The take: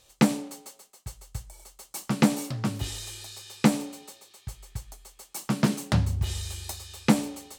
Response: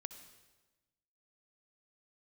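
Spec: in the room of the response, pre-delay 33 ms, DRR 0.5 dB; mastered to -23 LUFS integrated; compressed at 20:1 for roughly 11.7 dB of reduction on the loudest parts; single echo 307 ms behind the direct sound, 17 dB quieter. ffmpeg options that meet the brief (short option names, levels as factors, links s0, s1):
-filter_complex "[0:a]acompressor=threshold=0.0562:ratio=20,aecho=1:1:307:0.141,asplit=2[s0][s1];[1:a]atrim=start_sample=2205,adelay=33[s2];[s1][s2]afir=irnorm=-1:irlink=0,volume=1.41[s3];[s0][s3]amix=inputs=2:normalize=0,volume=2.99"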